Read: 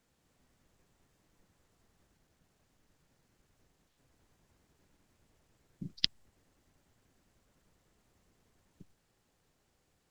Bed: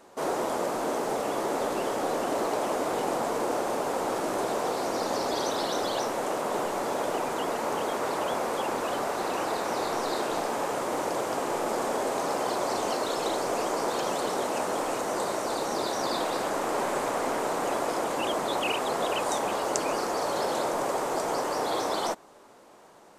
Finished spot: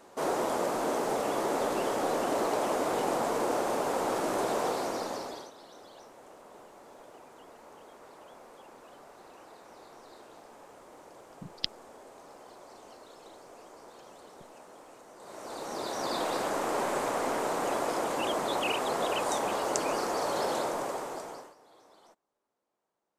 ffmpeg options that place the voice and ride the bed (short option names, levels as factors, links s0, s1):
-filter_complex "[0:a]adelay=5600,volume=0.75[s0];[1:a]volume=9.44,afade=t=out:st=4.65:d=0.86:silence=0.0841395,afade=t=in:st=15.19:d=1.11:silence=0.0944061,afade=t=out:st=20.51:d=1.04:silence=0.0375837[s1];[s0][s1]amix=inputs=2:normalize=0"